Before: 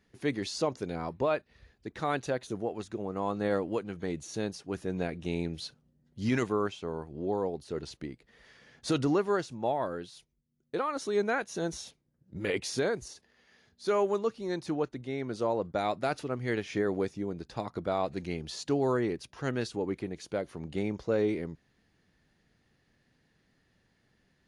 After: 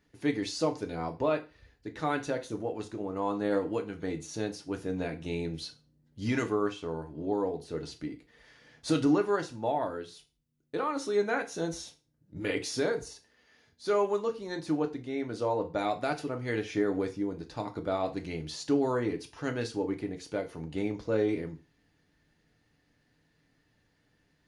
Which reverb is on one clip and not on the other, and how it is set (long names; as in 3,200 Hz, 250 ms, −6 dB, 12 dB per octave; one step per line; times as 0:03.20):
feedback delay network reverb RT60 0.32 s, low-frequency decay 0.95×, high-frequency decay 0.95×, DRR 4 dB
level −1.5 dB